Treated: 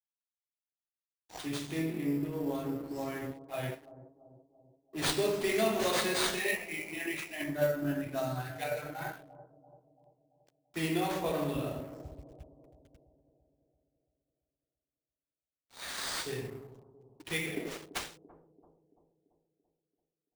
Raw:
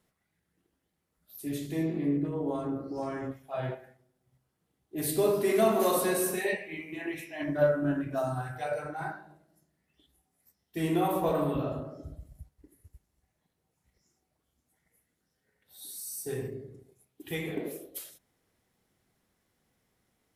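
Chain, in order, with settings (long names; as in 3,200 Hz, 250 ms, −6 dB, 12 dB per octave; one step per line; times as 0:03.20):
high shelf with overshoot 1,700 Hz +6.5 dB, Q 1.5
in parallel at −2.5 dB: speech leveller within 3 dB 0.5 s
on the sum: sample-rate reduction 13,000 Hz, jitter 0%
dead-zone distortion −44 dBFS
bucket-brigade delay 337 ms, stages 2,048, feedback 53%, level −16 dB
level −8 dB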